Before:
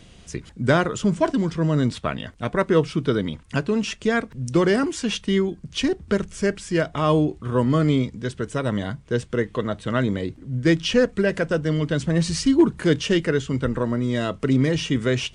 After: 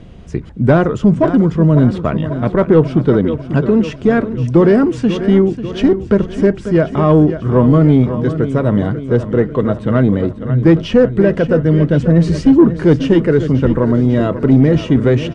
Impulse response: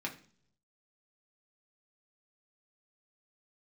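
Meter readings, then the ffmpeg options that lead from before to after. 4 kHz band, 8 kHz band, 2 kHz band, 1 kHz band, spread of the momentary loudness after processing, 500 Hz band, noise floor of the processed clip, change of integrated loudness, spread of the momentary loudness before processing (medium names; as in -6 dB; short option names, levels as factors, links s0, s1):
-3.0 dB, no reading, +1.5 dB, +5.5 dB, 6 LU, +9.0 dB, -30 dBFS, +9.5 dB, 8 LU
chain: -filter_complex "[0:a]asplit=2[s0][s1];[s1]aecho=0:1:542|1084|1626|2168|2710|3252:0.237|0.135|0.077|0.0439|0.025|0.0143[s2];[s0][s2]amix=inputs=2:normalize=0,asoftclip=type=tanh:threshold=0.237,lowpass=f=1800:p=1,tiltshelf=f=1200:g=4.5,volume=2.37"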